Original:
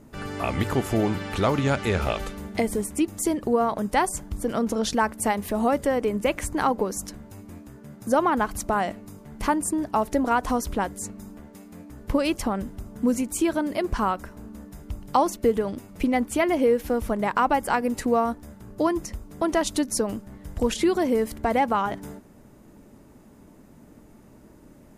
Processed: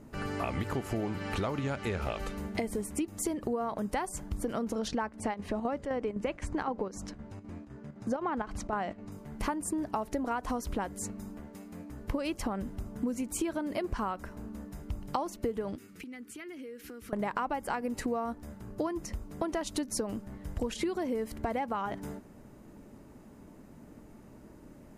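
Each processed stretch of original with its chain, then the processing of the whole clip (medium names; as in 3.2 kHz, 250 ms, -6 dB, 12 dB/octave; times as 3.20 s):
4.88–9.12 s: square tremolo 3.9 Hz, depth 60%, duty 80% + distance through air 84 m
15.76–17.13 s: high-pass 370 Hz 6 dB/octave + high-order bell 750 Hz -15 dB 1.2 oct + compression 8:1, threshold -40 dBFS
whole clip: treble shelf 5.8 kHz -4.5 dB; band-stop 3.5 kHz, Q 25; compression, threshold -28 dBFS; trim -1.5 dB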